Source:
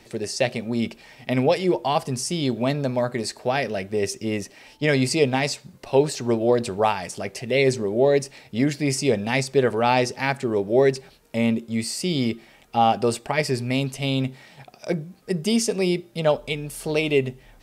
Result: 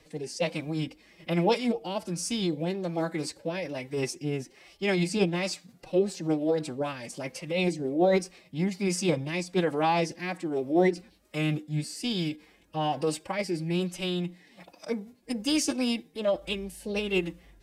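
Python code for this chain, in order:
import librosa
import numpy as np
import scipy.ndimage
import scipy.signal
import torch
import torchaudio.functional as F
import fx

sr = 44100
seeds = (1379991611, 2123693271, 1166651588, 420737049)

y = fx.rotary(x, sr, hz=1.2)
y = fx.pitch_keep_formants(y, sr, semitones=5.0)
y = F.gain(torch.from_numpy(y), -4.0).numpy()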